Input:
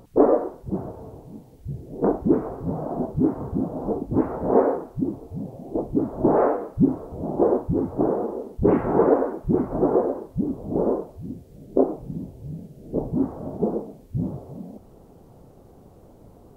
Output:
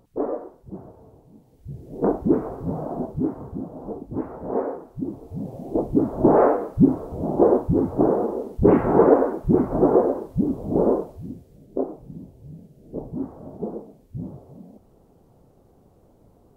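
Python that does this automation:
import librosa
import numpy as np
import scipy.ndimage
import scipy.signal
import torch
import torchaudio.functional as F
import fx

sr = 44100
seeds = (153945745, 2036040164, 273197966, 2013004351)

y = fx.gain(x, sr, db=fx.line((1.35, -9.5), (1.97, 0.0), (2.8, 0.0), (3.65, -7.0), (4.79, -7.0), (5.57, 3.0), (11.01, 3.0), (11.69, -6.5)))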